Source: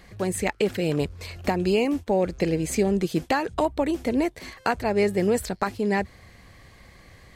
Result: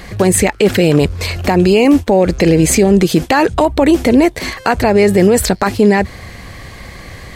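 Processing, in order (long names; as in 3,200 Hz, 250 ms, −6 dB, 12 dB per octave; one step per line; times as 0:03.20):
boost into a limiter +19 dB
level −1 dB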